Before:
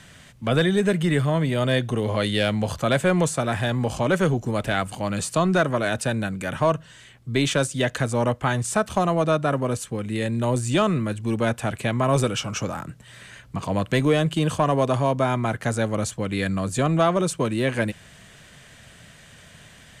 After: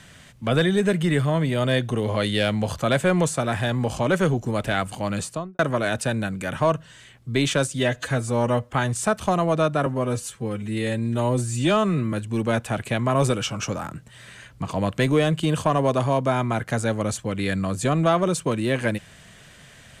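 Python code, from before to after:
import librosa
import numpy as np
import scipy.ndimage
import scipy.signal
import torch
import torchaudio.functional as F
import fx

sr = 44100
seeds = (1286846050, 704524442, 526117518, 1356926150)

y = fx.studio_fade_out(x, sr, start_s=5.14, length_s=0.45)
y = fx.edit(y, sr, fx.stretch_span(start_s=7.79, length_s=0.62, factor=1.5),
    fx.stretch_span(start_s=9.55, length_s=1.51, factor=1.5), tone=tone)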